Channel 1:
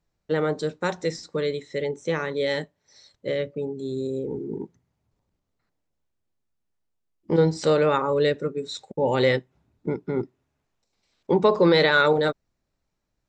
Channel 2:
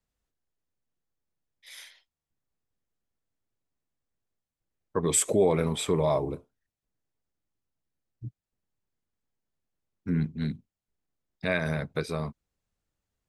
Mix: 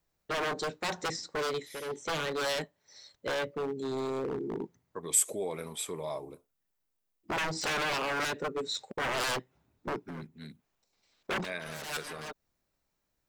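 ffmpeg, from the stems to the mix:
-filter_complex "[0:a]acrossover=split=480|3000[s0][s1][s2];[s1]acompressor=threshold=0.0794:ratio=6[s3];[s0][s3][s2]amix=inputs=3:normalize=0,aeval=exprs='0.0562*(abs(mod(val(0)/0.0562+3,4)-2)-1)':c=same,lowshelf=f=330:g=-6.5,volume=1[s4];[1:a]aemphasis=mode=production:type=bsi,volume=0.299,asplit=2[s5][s6];[s6]apad=whole_len=585938[s7];[s4][s7]sidechaincompress=threshold=0.00251:ratio=12:attack=5.1:release=186[s8];[s8][s5]amix=inputs=2:normalize=0"

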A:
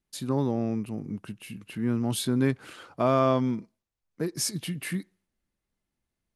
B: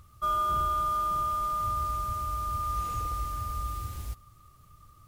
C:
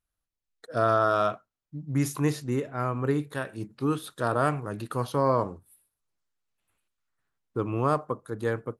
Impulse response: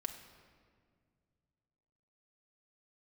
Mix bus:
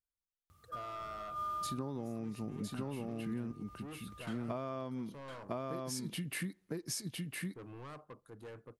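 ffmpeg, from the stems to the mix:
-filter_complex "[0:a]adelay=1500,volume=0.75,asplit=3[s0][s1][s2];[s0]atrim=end=3.52,asetpts=PTS-STARTPTS,afade=t=out:st=3.516:d=0.004:c=hsin[s3];[s1]atrim=start=3.52:end=4.27,asetpts=PTS-STARTPTS,volume=0[s4];[s2]atrim=start=4.27,asetpts=PTS-STARTPTS,afade=t=in:d=0.004:c=hsin[s5];[s3][s4][s5]concat=n=3:v=0:a=1,asplit=2[s6][s7];[s7]volume=0.596[s8];[1:a]highpass=84,acrossover=split=5500[s9][s10];[s10]acompressor=threshold=0.00158:ratio=4:attack=1:release=60[s11];[s9][s11]amix=inputs=2:normalize=0,adelay=500,volume=0.422,afade=t=out:st=1.55:d=0.48:silence=0.266073[s12];[2:a]alimiter=limit=0.188:level=0:latency=1:release=268,asoftclip=type=tanh:threshold=0.0335,volume=0.178,asplit=2[s13][s14];[s14]apad=whole_len=245731[s15];[s12][s15]sidechaincompress=threshold=0.00126:ratio=8:attack=16:release=119[s16];[s8]aecho=0:1:1008:1[s17];[s6][s16][s13][s17]amix=inputs=4:normalize=0,acompressor=threshold=0.0178:ratio=16"

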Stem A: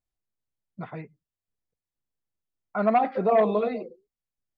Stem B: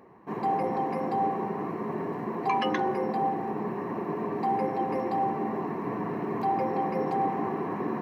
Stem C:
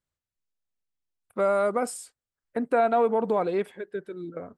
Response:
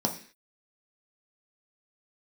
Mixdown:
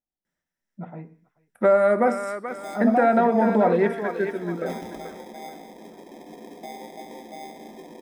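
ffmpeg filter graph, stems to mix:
-filter_complex "[0:a]lowpass=2900,volume=0.299,asplit=4[s0][s1][s2][s3];[s1]volume=0.501[s4];[s2]volume=0.106[s5];[1:a]highpass=f=1300:p=1,acrusher=samples=31:mix=1:aa=0.000001,adelay=2200,volume=0.316,asplit=2[s6][s7];[s7]volume=0.398[s8];[2:a]deesser=0.9,equalizer=f=1800:t=o:w=0.59:g=14,adelay=250,volume=0.794,asplit=3[s9][s10][s11];[s10]volume=0.473[s12];[s11]volume=0.562[s13];[s3]apad=whole_len=450625[s14];[s6][s14]sidechaincompress=threshold=0.00708:ratio=8:attack=16:release=602[s15];[3:a]atrim=start_sample=2205[s16];[s4][s8][s12]amix=inputs=3:normalize=0[s17];[s17][s16]afir=irnorm=-1:irlink=0[s18];[s5][s13]amix=inputs=2:normalize=0,aecho=0:1:434|868|1302|1736|2170:1|0.32|0.102|0.0328|0.0105[s19];[s0][s15][s9][s18][s19]amix=inputs=5:normalize=0,alimiter=limit=0.355:level=0:latency=1:release=473"

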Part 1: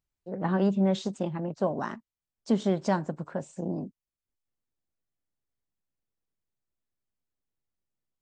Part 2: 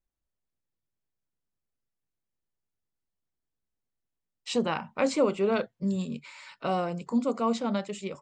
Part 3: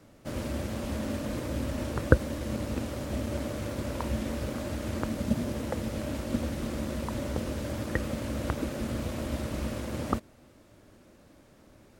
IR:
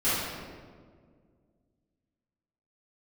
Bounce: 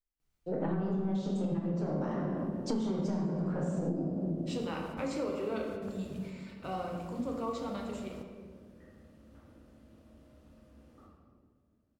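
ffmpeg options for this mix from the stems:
-filter_complex "[0:a]acrossover=split=450[s0][s1];[s1]acompressor=threshold=0.0126:ratio=4[s2];[s0][s2]amix=inputs=2:normalize=0,aeval=exprs='(tanh(12.6*val(0)+0.3)-tanh(0.3))/12.6':c=same,adelay=200,volume=1.06,asplit=2[s3][s4];[s4]volume=0.473[s5];[1:a]volume=0.224,asplit=3[s6][s7][s8];[s7]volume=0.266[s9];[2:a]bandreject=f=2200:w=12,adelay=850,volume=0.119,asplit=2[s10][s11];[s11]volume=0.075[s12];[s8]apad=whole_len=566419[s13];[s10][s13]sidechaingate=range=0.0224:threshold=0.00126:ratio=16:detection=peak[s14];[3:a]atrim=start_sample=2205[s15];[s5][s9][s12]amix=inputs=3:normalize=0[s16];[s16][s15]afir=irnorm=-1:irlink=0[s17];[s3][s6][s14][s17]amix=inputs=4:normalize=0,acompressor=threshold=0.0355:ratio=12"

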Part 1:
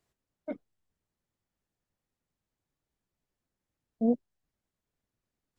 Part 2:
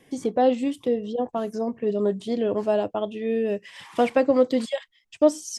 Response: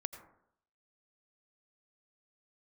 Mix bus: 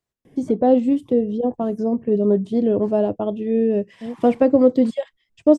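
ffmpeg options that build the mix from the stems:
-filter_complex "[0:a]volume=0.562[s0];[1:a]tiltshelf=f=720:g=9,adelay=250,volume=1.12[s1];[s0][s1]amix=inputs=2:normalize=0"

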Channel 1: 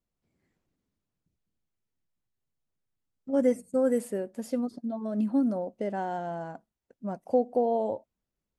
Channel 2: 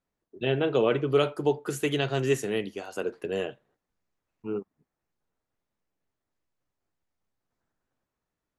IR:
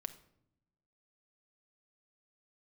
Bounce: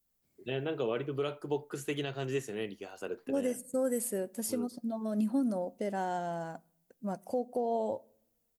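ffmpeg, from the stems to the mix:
-filter_complex "[0:a]aemphasis=mode=production:type=75fm,volume=0.708,asplit=2[s0][s1];[s1]volume=0.282[s2];[1:a]adelay=50,volume=0.422[s3];[2:a]atrim=start_sample=2205[s4];[s2][s4]afir=irnorm=-1:irlink=0[s5];[s0][s3][s5]amix=inputs=3:normalize=0,alimiter=limit=0.075:level=0:latency=1:release=303"

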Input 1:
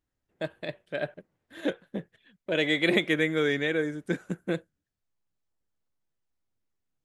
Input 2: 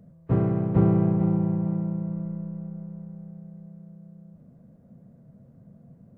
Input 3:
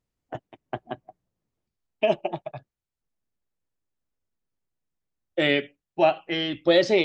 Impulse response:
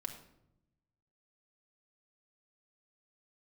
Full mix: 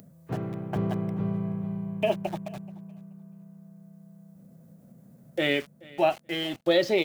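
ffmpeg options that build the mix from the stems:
-filter_complex "[1:a]highpass=100,crystalizer=i=6:c=0,volume=0.335,asplit=2[s0][s1];[s1]volume=0.708[s2];[2:a]aeval=exprs='val(0)*gte(abs(val(0)),0.0141)':c=same,volume=0.668,asplit=2[s3][s4];[s4]volume=0.0708[s5];[s2][s5]amix=inputs=2:normalize=0,aecho=0:1:430|860|1290:1|0.15|0.0225[s6];[s0][s3][s6]amix=inputs=3:normalize=0,acompressor=mode=upward:threshold=0.00631:ratio=2.5"

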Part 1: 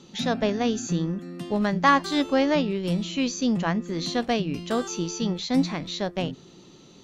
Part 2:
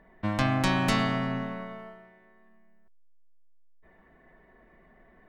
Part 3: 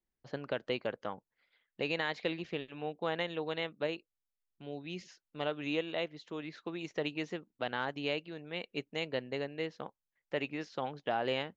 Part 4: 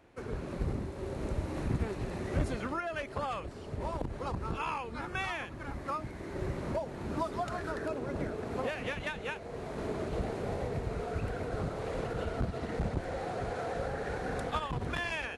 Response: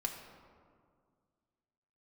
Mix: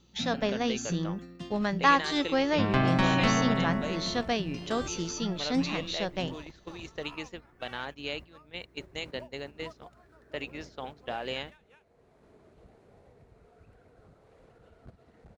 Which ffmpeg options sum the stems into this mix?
-filter_complex "[0:a]lowpass=f=7200:w=0.5412,lowpass=f=7200:w=1.3066,equalizer=f=270:t=o:w=2.9:g=-4,volume=0.794[s0];[1:a]lowpass=3300,adelay=2350,volume=1.06[s1];[2:a]aemphasis=mode=production:type=75fm,aeval=exprs='val(0)+0.00251*(sin(2*PI*60*n/s)+sin(2*PI*2*60*n/s)/2+sin(2*PI*3*60*n/s)/3+sin(2*PI*4*60*n/s)/4+sin(2*PI*5*60*n/s)/5)':c=same,volume=0.75[s2];[3:a]adelay=2450,volume=0.224[s3];[s0][s1][s2][s3]amix=inputs=4:normalize=0,agate=range=0.316:threshold=0.00891:ratio=16:detection=peak"

